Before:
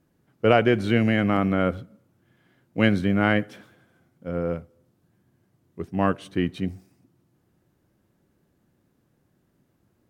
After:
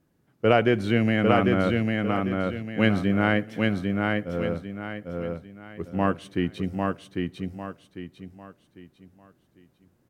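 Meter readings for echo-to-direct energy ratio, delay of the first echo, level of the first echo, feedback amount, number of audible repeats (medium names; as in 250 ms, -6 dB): -2.5 dB, 799 ms, -3.0 dB, 34%, 4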